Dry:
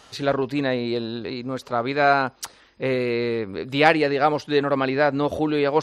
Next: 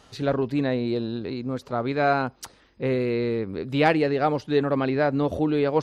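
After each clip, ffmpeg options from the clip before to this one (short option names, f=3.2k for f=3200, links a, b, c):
-af "lowshelf=f=450:g=9.5,volume=-6.5dB"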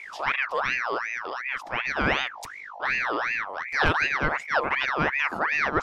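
-af "aeval=exprs='val(0)+0.0141*(sin(2*PI*50*n/s)+sin(2*PI*2*50*n/s)/2+sin(2*PI*3*50*n/s)/3+sin(2*PI*4*50*n/s)/4+sin(2*PI*5*50*n/s)/5)':c=same,aeval=exprs='val(0)*sin(2*PI*1500*n/s+1500*0.5/2.7*sin(2*PI*2.7*n/s))':c=same"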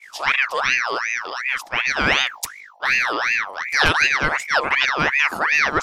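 -af "crystalizer=i=5:c=0,agate=range=-33dB:threshold=-28dB:ratio=3:detection=peak,volume=2dB"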